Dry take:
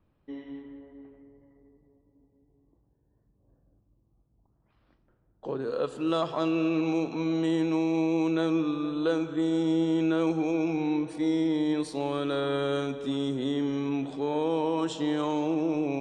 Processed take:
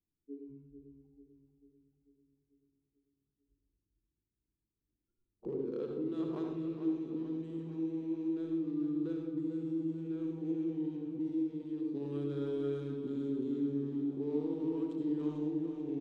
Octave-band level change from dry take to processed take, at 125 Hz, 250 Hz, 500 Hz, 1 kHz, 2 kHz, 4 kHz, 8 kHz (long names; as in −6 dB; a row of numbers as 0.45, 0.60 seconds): −7.5 dB, −7.5 dB, −10.0 dB, −22.0 dB, below −20 dB, below −20 dB, can't be measured